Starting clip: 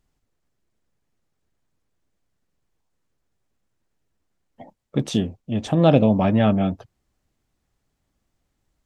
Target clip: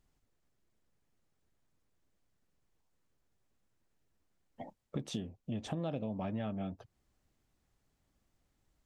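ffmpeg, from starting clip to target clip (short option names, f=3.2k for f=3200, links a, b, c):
-af "acompressor=threshold=-33dB:ratio=5,volume=-3.5dB"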